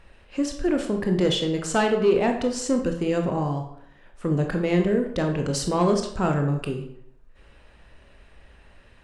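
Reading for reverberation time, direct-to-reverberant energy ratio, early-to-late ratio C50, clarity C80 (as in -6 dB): 0.70 s, 3.5 dB, 7.0 dB, 10.5 dB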